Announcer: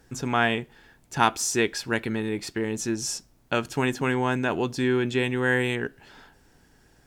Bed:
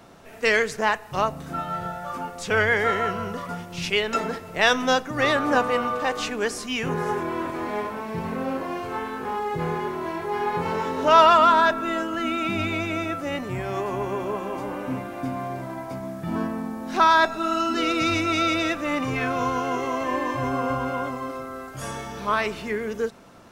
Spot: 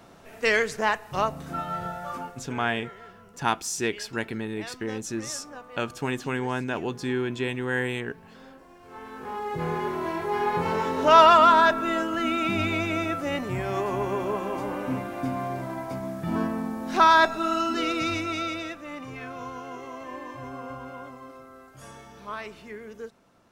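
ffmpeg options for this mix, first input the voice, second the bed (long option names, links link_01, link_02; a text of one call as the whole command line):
ffmpeg -i stem1.wav -i stem2.wav -filter_complex "[0:a]adelay=2250,volume=-4dB[link_01];[1:a]volume=20dB,afade=type=out:start_time=2.13:duration=0.4:silence=0.1,afade=type=in:start_time=8.79:duration=1.15:silence=0.0794328,afade=type=out:start_time=17.21:duration=1.59:silence=0.237137[link_02];[link_01][link_02]amix=inputs=2:normalize=0" out.wav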